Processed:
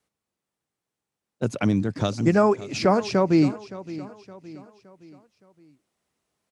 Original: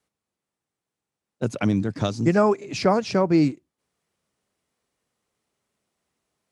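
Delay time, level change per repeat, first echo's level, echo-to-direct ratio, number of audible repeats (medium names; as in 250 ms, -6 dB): 567 ms, -7.0 dB, -16.5 dB, -15.5 dB, 3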